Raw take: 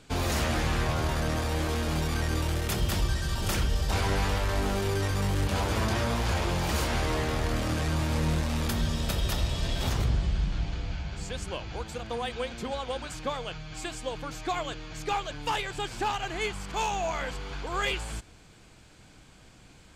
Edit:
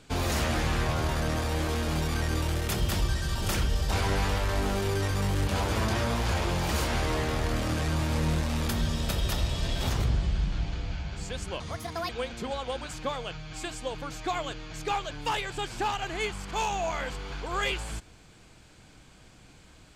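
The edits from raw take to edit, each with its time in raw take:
0:11.60–0:12.30: play speed 142%

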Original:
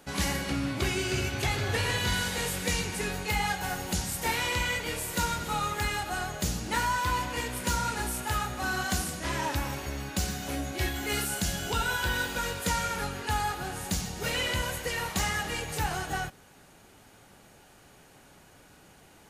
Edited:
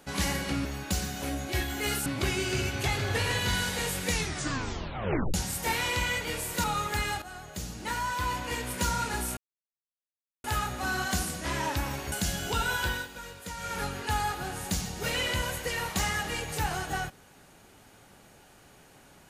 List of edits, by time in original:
0:02.71: tape stop 1.22 s
0:05.23–0:05.50: remove
0:06.08–0:07.53: fade in, from −12.5 dB
0:08.23: splice in silence 1.07 s
0:09.91–0:11.32: move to 0:00.65
0:12.05–0:13.00: duck −11 dB, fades 0.23 s

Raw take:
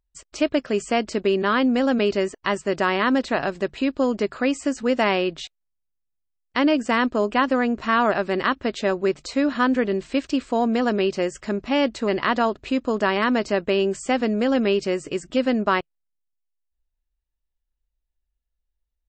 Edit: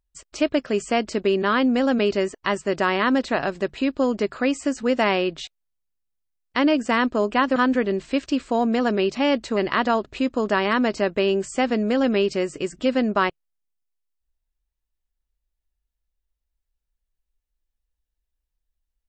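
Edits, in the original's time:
0:07.56–0:09.57: remove
0:11.16–0:11.66: remove

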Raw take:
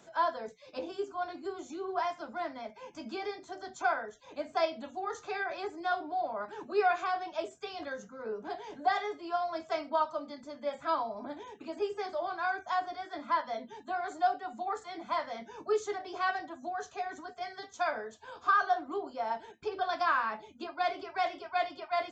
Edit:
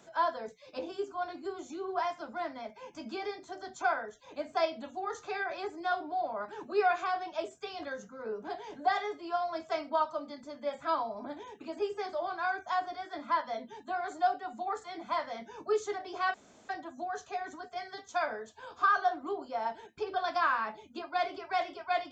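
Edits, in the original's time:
0:16.34: splice in room tone 0.35 s

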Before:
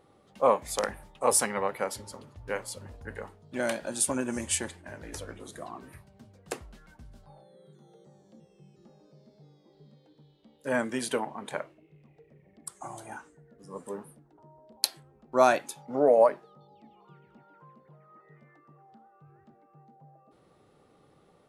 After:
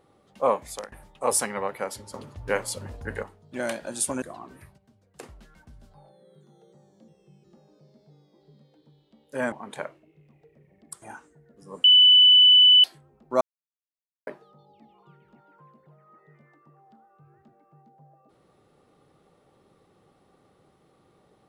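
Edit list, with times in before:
0:00.61–0:00.92: fade out linear, to −21.5 dB
0:02.14–0:03.23: clip gain +7 dB
0:04.22–0:05.54: remove
0:06.10–0:06.55: clip gain −8 dB
0:10.84–0:11.27: remove
0:12.77–0:13.04: remove
0:13.86–0:14.86: beep over 2,990 Hz −11 dBFS
0:15.43–0:16.29: silence

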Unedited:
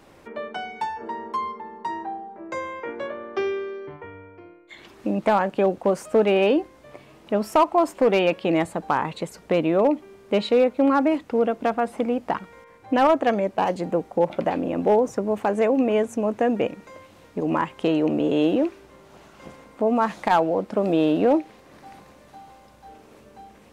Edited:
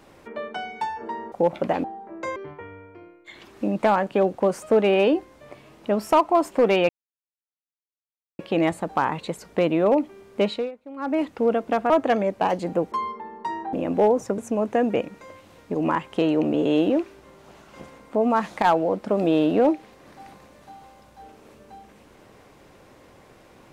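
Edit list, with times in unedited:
0:01.32–0:02.13: swap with 0:14.09–0:14.61
0:02.65–0:03.79: remove
0:08.32: splice in silence 1.50 s
0:10.36–0:11.17: duck −20.5 dB, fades 0.28 s
0:11.83–0:13.07: remove
0:15.26–0:16.04: remove

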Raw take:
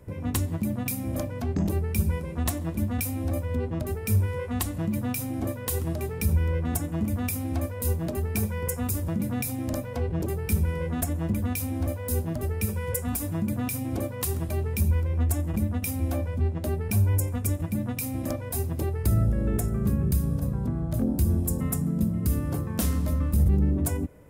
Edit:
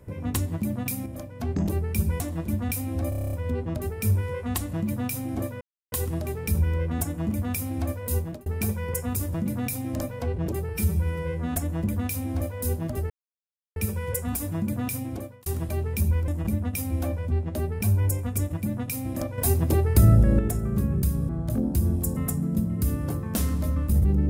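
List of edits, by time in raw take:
0:01.06–0:01.40: clip gain −7.5 dB
0:02.20–0:02.49: remove
0:03.38: stutter 0.03 s, 9 plays
0:05.66: splice in silence 0.31 s
0:07.93–0:08.20: fade out
0:10.43–0:10.99: time-stretch 1.5×
0:12.56: splice in silence 0.66 s
0:13.77–0:14.26: fade out
0:15.08–0:15.37: remove
0:18.47–0:19.48: clip gain +6.5 dB
0:20.38–0:20.73: remove

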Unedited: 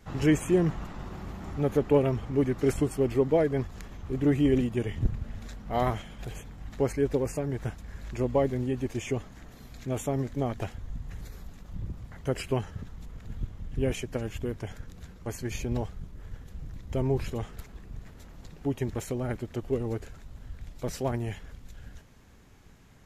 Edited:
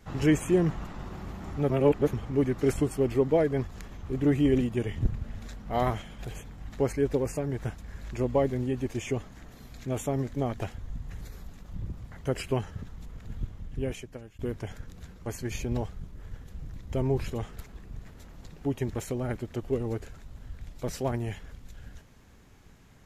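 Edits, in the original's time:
0:01.70–0:02.13: reverse
0:13.49–0:14.39: fade out, to −22.5 dB

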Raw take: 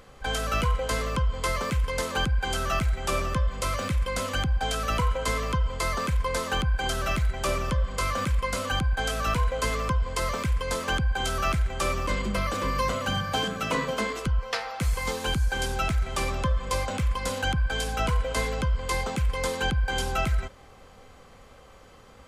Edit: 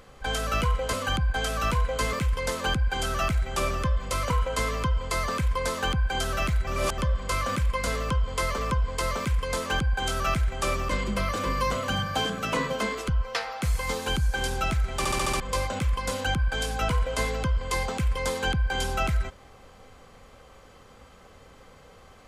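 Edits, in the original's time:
0:00.93–0:01.64: swap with 0:08.56–0:09.76
0:03.81–0:04.99: remove
0:07.36–0:07.67: reverse
0:16.16: stutter in place 0.07 s, 6 plays

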